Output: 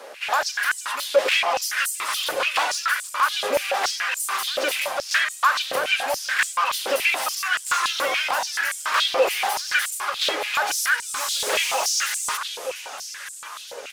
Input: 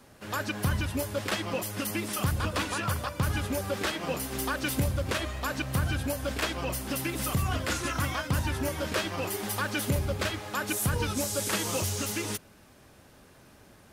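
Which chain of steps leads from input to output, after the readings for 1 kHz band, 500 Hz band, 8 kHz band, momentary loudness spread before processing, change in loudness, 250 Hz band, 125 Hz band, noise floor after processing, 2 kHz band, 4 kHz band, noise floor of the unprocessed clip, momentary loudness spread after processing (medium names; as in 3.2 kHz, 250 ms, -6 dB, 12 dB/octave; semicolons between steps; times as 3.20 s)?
+11.0 dB, +7.5 dB, +8.0 dB, 4 LU, +8.0 dB, -12.5 dB, under -30 dB, -38 dBFS, +12.0 dB, +11.5 dB, -56 dBFS, 6 LU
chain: feedback delay 918 ms, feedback 58%, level -18 dB; overdrive pedal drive 21 dB, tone 4.8 kHz, clips at -17 dBFS; step-sequenced high-pass 7 Hz 510–7900 Hz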